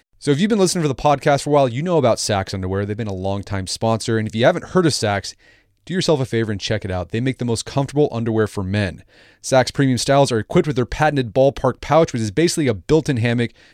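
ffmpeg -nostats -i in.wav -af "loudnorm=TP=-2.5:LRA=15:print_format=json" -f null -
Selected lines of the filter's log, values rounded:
"input_i" : "-18.7",
"input_tp" : "-3.1",
"input_lra" : "2.9",
"input_thresh" : "-28.9",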